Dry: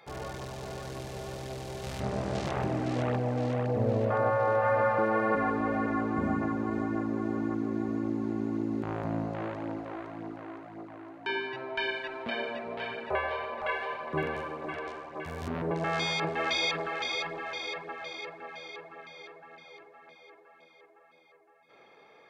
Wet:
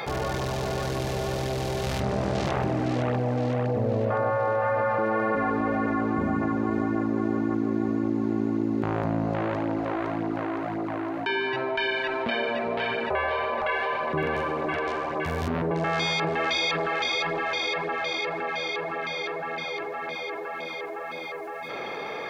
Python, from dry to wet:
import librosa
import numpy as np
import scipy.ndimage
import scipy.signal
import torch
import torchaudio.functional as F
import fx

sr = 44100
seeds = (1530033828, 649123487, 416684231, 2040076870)

y = fx.peak_eq(x, sr, hz=8500.0, db=-4.0, octaves=0.72)
y = fx.env_flatten(y, sr, amount_pct=70)